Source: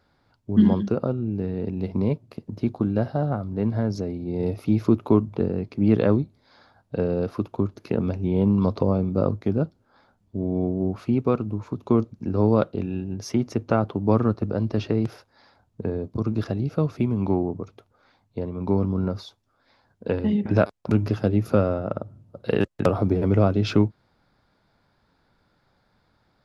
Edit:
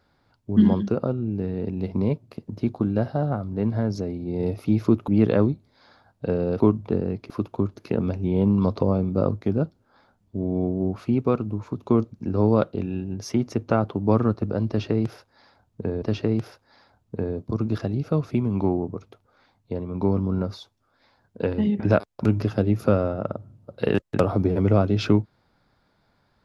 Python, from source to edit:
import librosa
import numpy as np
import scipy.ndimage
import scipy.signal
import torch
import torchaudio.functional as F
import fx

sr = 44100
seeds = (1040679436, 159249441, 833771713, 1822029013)

y = fx.edit(x, sr, fx.move(start_s=5.08, length_s=0.7, to_s=7.3),
    fx.repeat(start_s=14.68, length_s=1.34, count=2), tone=tone)